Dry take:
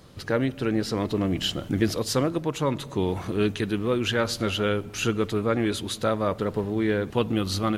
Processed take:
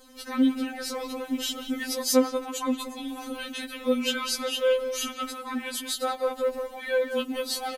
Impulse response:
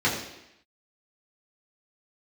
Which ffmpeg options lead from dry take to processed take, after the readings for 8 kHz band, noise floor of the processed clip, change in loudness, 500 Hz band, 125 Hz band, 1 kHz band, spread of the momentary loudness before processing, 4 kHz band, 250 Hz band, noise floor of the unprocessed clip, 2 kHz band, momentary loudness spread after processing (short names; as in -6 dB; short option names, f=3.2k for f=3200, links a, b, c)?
+4.0 dB, -43 dBFS, -2.0 dB, -1.5 dB, under -30 dB, -2.0 dB, 3 LU, 0.0 dB, -3.0 dB, -41 dBFS, -2.0 dB, 10 LU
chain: -filter_complex "[0:a]highshelf=f=7k:g=11.5,asplit=2[a][b];[b]adelay=180,highpass=300,lowpass=3.4k,asoftclip=type=hard:threshold=-18.5dB,volume=-8dB[c];[a][c]amix=inputs=2:normalize=0,afftfilt=real='re*3.46*eq(mod(b,12),0)':imag='im*3.46*eq(mod(b,12),0)':win_size=2048:overlap=0.75"